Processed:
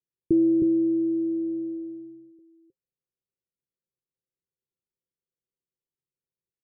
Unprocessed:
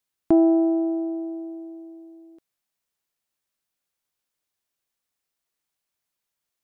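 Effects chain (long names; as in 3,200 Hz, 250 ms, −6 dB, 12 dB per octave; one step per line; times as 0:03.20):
in parallel at −7.5 dB: fuzz pedal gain 34 dB, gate −40 dBFS
on the sum: Chebyshev low-pass with heavy ripple 540 Hz, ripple 9 dB
single-tap delay 314 ms −3.5 dB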